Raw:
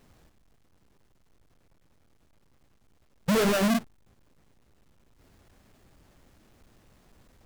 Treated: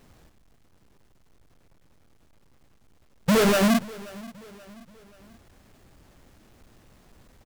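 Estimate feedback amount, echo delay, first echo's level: 46%, 0.531 s, -20.5 dB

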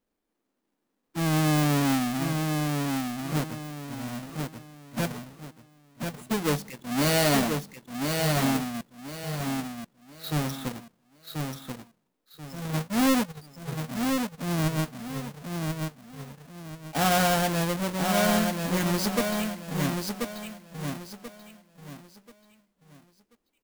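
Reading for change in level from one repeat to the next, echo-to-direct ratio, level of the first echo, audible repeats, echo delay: -10.5 dB, -4.0 dB, -4.5 dB, 3, 1.035 s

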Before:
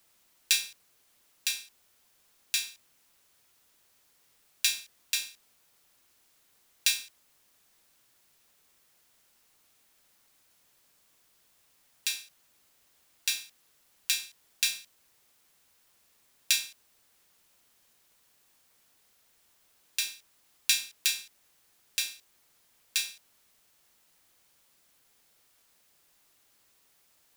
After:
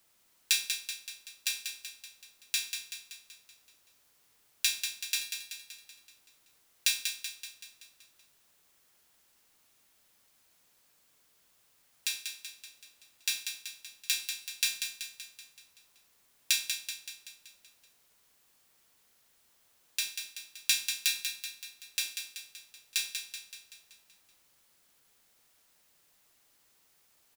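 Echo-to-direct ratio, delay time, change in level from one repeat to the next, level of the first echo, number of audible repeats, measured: -5.5 dB, 0.19 s, -5.0 dB, -7.0 dB, 6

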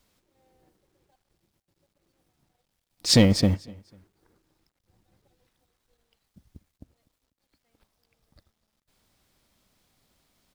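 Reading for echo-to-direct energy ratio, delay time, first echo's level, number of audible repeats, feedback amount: -22.5 dB, 0.247 s, -23.0 dB, 2, 31%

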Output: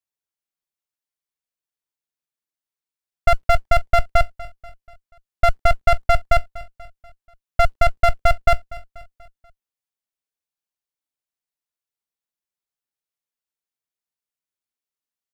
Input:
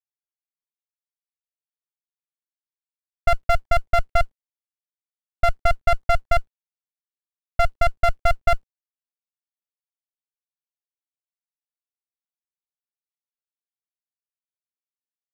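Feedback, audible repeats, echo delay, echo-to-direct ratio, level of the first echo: 49%, 3, 0.242 s, -18.0 dB, -19.0 dB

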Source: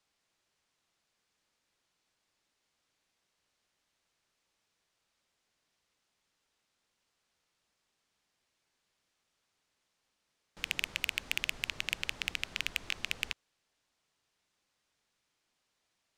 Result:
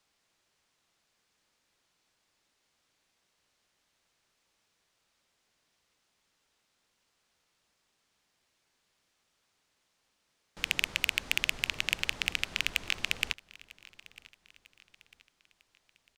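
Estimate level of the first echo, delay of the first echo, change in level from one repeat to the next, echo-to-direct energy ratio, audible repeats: -22.0 dB, 0.949 s, -7.5 dB, -21.0 dB, 2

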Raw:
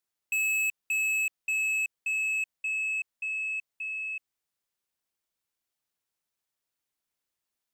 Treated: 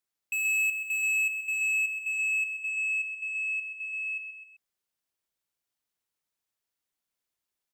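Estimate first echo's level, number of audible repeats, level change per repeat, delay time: -7.5 dB, 3, -5.0 dB, 0.129 s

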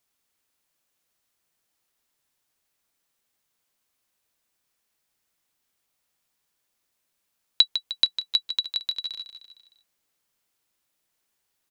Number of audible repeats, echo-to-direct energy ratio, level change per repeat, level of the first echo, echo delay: 4, -8.5 dB, -5.5 dB, -10.0 dB, 0.153 s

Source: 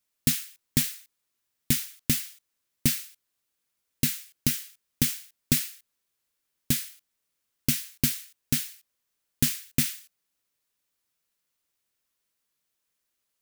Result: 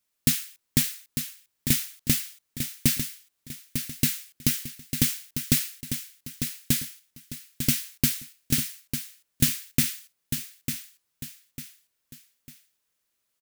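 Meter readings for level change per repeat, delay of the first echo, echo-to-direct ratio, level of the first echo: -9.0 dB, 0.899 s, -7.5 dB, -8.0 dB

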